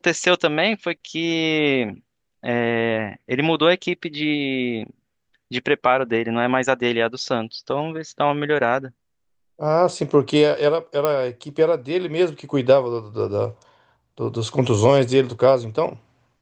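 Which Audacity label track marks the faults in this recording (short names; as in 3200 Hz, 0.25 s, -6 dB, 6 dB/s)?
11.050000	11.050000	pop -7 dBFS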